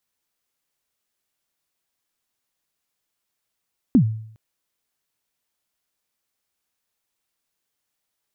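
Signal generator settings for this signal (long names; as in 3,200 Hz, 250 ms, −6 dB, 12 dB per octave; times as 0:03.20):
synth kick length 0.41 s, from 290 Hz, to 110 Hz, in 88 ms, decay 0.63 s, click off, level −8 dB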